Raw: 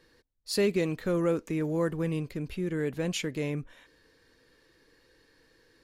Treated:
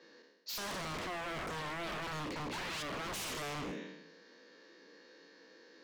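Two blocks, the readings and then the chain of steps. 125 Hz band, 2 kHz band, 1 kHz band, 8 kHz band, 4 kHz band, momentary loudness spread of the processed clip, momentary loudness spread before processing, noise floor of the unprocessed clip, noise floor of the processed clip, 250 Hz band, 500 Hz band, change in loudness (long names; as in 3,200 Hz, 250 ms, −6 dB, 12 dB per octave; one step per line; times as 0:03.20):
−14.0 dB, −1.0 dB, +3.5 dB, −3.0 dB, −2.0 dB, 20 LU, 8 LU, −65 dBFS, −61 dBFS, −14.5 dB, −14.0 dB, −9.5 dB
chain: peak hold with a decay on every bin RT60 1.01 s
Chebyshev band-pass filter 180–6,600 Hz, order 5
parametric band 580 Hz +4 dB 0.7 octaves
brickwall limiter −25.5 dBFS, peak gain reduction 12 dB
sound drawn into the spectrogram rise, 0:02.52–0:02.83, 770–3,600 Hz −40 dBFS
wave folding −37 dBFS
level +1.5 dB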